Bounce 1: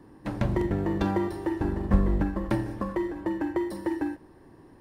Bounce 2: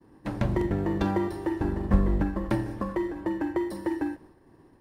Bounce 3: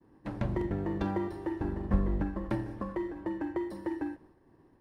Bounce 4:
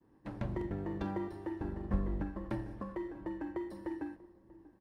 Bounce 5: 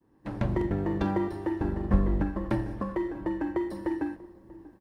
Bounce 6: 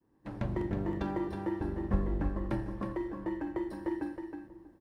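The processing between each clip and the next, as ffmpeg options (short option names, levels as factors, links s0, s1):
-af "agate=range=0.0224:threshold=0.00447:ratio=3:detection=peak"
-af "highshelf=f=4700:g=-8,volume=0.531"
-filter_complex "[0:a]asplit=2[s0][s1];[s1]adelay=639,lowpass=f=910:p=1,volume=0.112,asplit=2[s2][s3];[s3]adelay=639,lowpass=f=910:p=1,volume=0.5,asplit=2[s4][s5];[s5]adelay=639,lowpass=f=910:p=1,volume=0.5,asplit=2[s6][s7];[s7]adelay=639,lowpass=f=910:p=1,volume=0.5[s8];[s0][s2][s4][s6][s8]amix=inputs=5:normalize=0,volume=0.531"
-af "dynaudnorm=f=170:g=3:m=2.99"
-af "aecho=1:1:318:0.473,volume=0.501"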